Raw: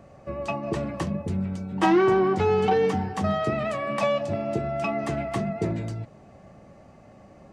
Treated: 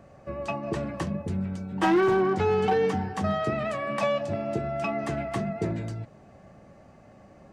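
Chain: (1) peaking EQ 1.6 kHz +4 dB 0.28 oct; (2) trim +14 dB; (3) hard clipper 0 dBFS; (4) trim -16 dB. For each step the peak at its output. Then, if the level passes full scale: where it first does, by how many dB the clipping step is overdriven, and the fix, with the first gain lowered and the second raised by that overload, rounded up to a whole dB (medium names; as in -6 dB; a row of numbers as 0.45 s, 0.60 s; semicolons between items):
-9.0 dBFS, +5.0 dBFS, 0.0 dBFS, -16.0 dBFS; step 2, 5.0 dB; step 2 +9 dB, step 4 -11 dB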